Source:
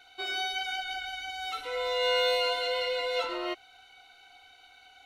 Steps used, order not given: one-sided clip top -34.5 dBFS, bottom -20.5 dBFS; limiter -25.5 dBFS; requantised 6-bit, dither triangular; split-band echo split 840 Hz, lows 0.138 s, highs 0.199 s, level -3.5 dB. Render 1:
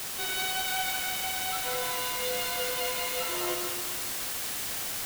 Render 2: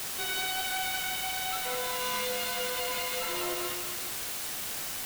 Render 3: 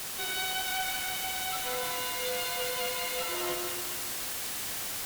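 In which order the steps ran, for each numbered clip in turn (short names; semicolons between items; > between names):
limiter > one-sided clip > requantised > split-band echo; one-sided clip > split-band echo > limiter > requantised; limiter > requantised > split-band echo > one-sided clip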